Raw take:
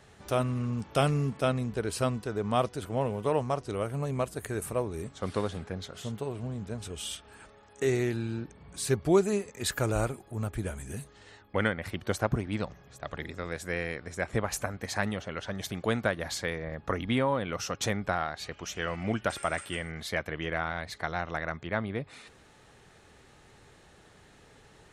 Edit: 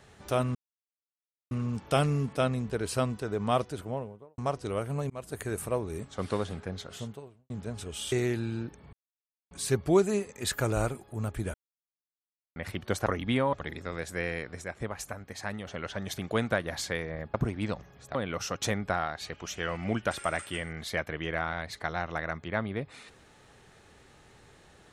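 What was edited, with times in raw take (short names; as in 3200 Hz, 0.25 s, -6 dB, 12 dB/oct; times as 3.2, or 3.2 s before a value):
0.55 insert silence 0.96 s
2.65–3.42 studio fade out
4.14–4.39 fade in
6.02–6.54 fade out quadratic
7.16–7.89 cut
8.7 insert silence 0.58 s
10.73–11.75 mute
12.25–13.06 swap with 16.87–17.34
14.17–15.2 gain -6 dB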